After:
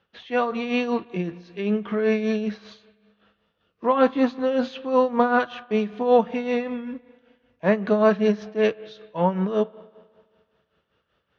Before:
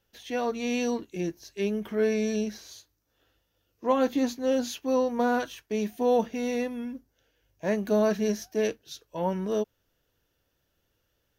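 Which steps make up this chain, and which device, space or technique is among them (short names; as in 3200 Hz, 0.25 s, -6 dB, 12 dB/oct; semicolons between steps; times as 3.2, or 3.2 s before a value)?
combo amplifier with spring reverb and tremolo (spring tank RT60 1.8 s, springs 34/44 ms, chirp 20 ms, DRR 17 dB; tremolo 5.2 Hz, depth 65%; speaker cabinet 88–3700 Hz, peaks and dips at 110 Hz -7 dB, 180 Hz +4 dB, 300 Hz -6 dB, 1200 Hz +9 dB); gain +8 dB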